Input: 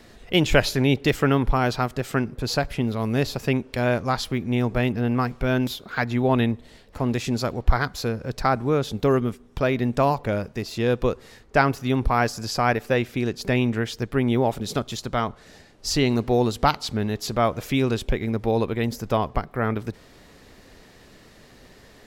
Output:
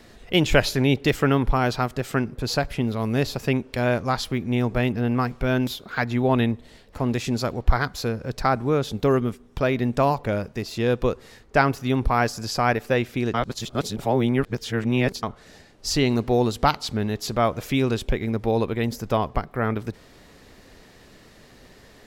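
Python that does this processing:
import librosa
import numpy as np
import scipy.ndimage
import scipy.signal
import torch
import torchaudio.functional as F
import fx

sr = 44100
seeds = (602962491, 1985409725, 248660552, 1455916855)

y = fx.edit(x, sr, fx.reverse_span(start_s=13.34, length_s=1.89), tone=tone)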